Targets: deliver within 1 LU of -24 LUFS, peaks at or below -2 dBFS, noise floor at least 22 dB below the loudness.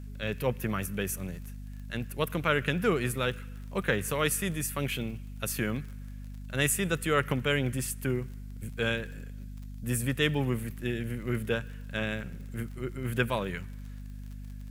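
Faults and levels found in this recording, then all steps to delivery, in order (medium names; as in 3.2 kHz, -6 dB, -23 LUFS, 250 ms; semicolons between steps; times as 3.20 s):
tick rate 32 per s; hum 50 Hz; highest harmonic 250 Hz; hum level -39 dBFS; loudness -31.0 LUFS; peak level -11.0 dBFS; loudness target -24.0 LUFS
-> de-click; de-hum 50 Hz, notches 5; trim +7 dB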